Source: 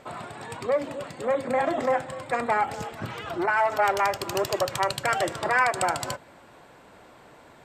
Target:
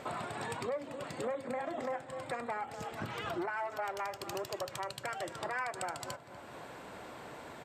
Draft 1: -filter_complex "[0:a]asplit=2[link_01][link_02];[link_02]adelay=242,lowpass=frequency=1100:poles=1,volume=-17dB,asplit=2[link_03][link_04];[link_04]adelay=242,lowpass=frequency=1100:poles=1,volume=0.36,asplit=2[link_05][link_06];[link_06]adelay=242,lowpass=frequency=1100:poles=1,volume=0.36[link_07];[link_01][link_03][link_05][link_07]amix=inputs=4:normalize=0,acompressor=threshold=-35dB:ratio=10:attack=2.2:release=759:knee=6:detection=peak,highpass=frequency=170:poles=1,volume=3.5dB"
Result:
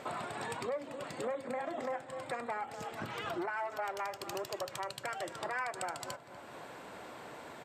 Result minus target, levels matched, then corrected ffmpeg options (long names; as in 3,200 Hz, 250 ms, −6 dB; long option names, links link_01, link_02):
125 Hz band −3.0 dB
-filter_complex "[0:a]asplit=2[link_01][link_02];[link_02]adelay=242,lowpass=frequency=1100:poles=1,volume=-17dB,asplit=2[link_03][link_04];[link_04]adelay=242,lowpass=frequency=1100:poles=1,volume=0.36,asplit=2[link_05][link_06];[link_06]adelay=242,lowpass=frequency=1100:poles=1,volume=0.36[link_07];[link_01][link_03][link_05][link_07]amix=inputs=4:normalize=0,acompressor=threshold=-35dB:ratio=10:attack=2.2:release=759:knee=6:detection=peak,highpass=frequency=63:poles=1,volume=3.5dB"